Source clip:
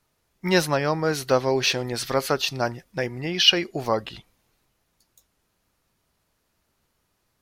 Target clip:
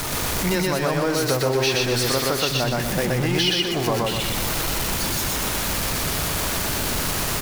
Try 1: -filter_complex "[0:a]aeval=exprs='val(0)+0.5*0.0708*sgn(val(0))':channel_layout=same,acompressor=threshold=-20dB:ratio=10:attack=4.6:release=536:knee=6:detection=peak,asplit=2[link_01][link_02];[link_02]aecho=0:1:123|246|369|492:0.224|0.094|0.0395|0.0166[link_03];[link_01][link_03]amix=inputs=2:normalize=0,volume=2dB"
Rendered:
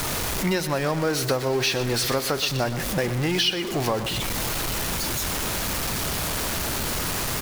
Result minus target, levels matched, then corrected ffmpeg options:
echo-to-direct −12 dB
-filter_complex "[0:a]aeval=exprs='val(0)+0.5*0.0708*sgn(val(0))':channel_layout=same,acompressor=threshold=-20dB:ratio=10:attack=4.6:release=536:knee=6:detection=peak,asplit=2[link_01][link_02];[link_02]aecho=0:1:123|246|369|492|615|738:0.891|0.374|0.157|0.066|0.0277|0.0116[link_03];[link_01][link_03]amix=inputs=2:normalize=0,volume=2dB"

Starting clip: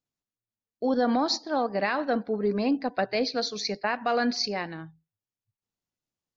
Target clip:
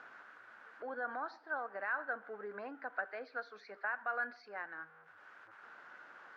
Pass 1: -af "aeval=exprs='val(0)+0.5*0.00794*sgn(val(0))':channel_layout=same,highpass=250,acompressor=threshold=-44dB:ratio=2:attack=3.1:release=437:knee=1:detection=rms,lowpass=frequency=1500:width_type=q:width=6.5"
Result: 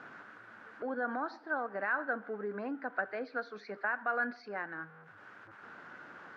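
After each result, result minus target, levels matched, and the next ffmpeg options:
250 Hz band +8.5 dB; downward compressor: peak gain reduction −4 dB
-af "aeval=exprs='val(0)+0.5*0.00794*sgn(val(0))':channel_layout=same,highpass=540,acompressor=threshold=-44dB:ratio=2:attack=3.1:release=437:knee=1:detection=rms,lowpass=frequency=1500:width_type=q:width=6.5"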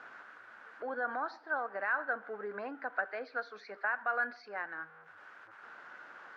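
downward compressor: peak gain reduction −4.5 dB
-af "aeval=exprs='val(0)+0.5*0.00794*sgn(val(0))':channel_layout=same,highpass=540,acompressor=threshold=-53dB:ratio=2:attack=3.1:release=437:knee=1:detection=rms,lowpass=frequency=1500:width_type=q:width=6.5"

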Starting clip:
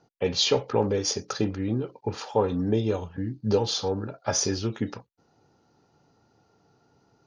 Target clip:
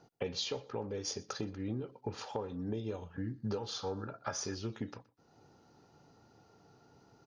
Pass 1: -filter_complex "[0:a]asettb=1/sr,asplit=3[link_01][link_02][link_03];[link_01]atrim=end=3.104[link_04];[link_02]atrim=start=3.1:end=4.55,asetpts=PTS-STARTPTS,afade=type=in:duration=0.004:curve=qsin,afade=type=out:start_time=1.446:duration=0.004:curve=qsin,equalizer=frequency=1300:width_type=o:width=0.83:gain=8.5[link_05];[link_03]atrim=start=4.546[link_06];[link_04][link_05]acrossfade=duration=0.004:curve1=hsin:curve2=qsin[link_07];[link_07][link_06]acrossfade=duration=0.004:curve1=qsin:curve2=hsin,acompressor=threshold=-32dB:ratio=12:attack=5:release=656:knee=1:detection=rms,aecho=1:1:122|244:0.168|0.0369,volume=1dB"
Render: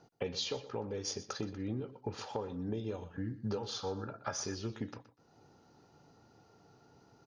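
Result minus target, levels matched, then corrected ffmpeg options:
echo-to-direct +8 dB
-filter_complex "[0:a]asettb=1/sr,asplit=3[link_01][link_02][link_03];[link_01]atrim=end=3.104[link_04];[link_02]atrim=start=3.1:end=4.55,asetpts=PTS-STARTPTS,afade=type=in:duration=0.004:curve=qsin,afade=type=out:start_time=1.446:duration=0.004:curve=qsin,equalizer=frequency=1300:width_type=o:width=0.83:gain=8.5[link_05];[link_03]atrim=start=4.546[link_06];[link_04][link_05]acrossfade=duration=0.004:curve1=hsin:curve2=qsin[link_07];[link_07][link_06]acrossfade=duration=0.004:curve1=qsin:curve2=hsin,acompressor=threshold=-32dB:ratio=12:attack=5:release=656:knee=1:detection=rms,aecho=1:1:122|244:0.0668|0.0147,volume=1dB"

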